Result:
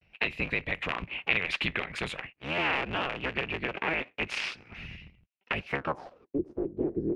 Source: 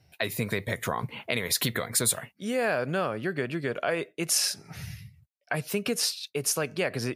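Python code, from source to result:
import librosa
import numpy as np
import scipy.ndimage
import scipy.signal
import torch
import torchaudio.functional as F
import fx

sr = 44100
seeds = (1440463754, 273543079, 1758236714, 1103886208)

y = fx.cycle_switch(x, sr, every=3, mode='inverted')
y = fx.filter_sweep_lowpass(y, sr, from_hz=2600.0, to_hz=360.0, start_s=5.66, end_s=6.28, q=5.1)
y = fx.vibrato(y, sr, rate_hz=0.42, depth_cents=56.0)
y = y * librosa.db_to_amplitude(-5.5)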